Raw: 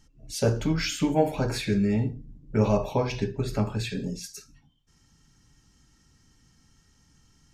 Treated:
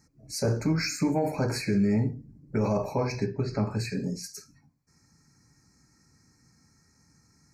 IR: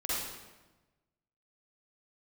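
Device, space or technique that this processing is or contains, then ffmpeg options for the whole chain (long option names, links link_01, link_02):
PA system with an anti-feedback notch: -filter_complex "[0:a]highpass=110,asuperstop=centerf=3200:order=20:qfactor=2.2,alimiter=limit=-18dB:level=0:latency=1:release=11,asettb=1/sr,asplit=3[link_01][link_02][link_03];[link_01]atrim=end=3.264[link_04];[link_02]atrim=start=3.26:end=3.71,asetpts=PTS-STARTPTS,afade=type=in:duration=0.004:curve=qsin,afade=type=out:start_time=0.446:duration=0.004:curve=qsin,lowpass=frequency=5500:width=0.5412,lowpass=frequency=5500:width=1.3066[link_05];[link_03]atrim=start=3.706[link_06];[link_04][link_05]acrossfade=duration=0.004:curve1=hsin:curve2=qsin[link_07];[link_07][link_06]acrossfade=duration=0.004:curve1=qsin:curve2=hsin,lowshelf=frequency=120:gain=4.5"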